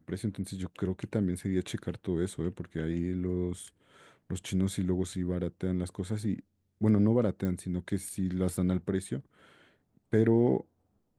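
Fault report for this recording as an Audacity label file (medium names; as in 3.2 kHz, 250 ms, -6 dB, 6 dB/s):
7.450000	7.450000	pop -22 dBFS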